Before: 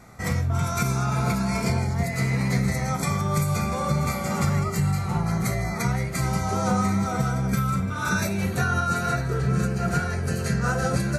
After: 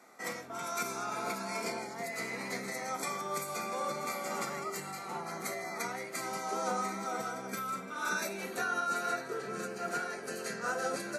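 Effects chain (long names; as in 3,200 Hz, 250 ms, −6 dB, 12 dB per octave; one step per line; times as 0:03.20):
high-pass filter 280 Hz 24 dB per octave
level −7 dB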